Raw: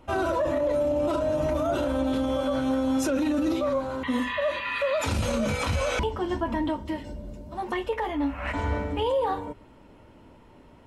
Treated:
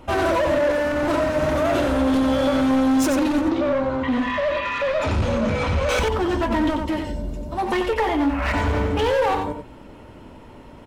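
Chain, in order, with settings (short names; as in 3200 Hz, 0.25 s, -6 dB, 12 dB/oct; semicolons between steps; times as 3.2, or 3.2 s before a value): hard clip -27 dBFS, distortion -10 dB; 3.41–5.89 tape spacing loss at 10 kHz 20 dB; echo 91 ms -6.5 dB; gain +8.5 dB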